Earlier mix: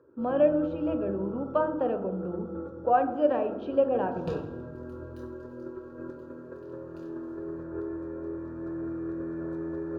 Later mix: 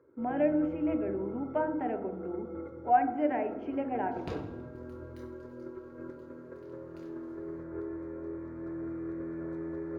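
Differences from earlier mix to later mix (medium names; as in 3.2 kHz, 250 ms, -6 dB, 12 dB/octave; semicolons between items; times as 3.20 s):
speech: add static phaser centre 780 Hz, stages 8; first sound -3.5 dB; master: remove Butterworth band-stop 2.1 kHz, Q 3.7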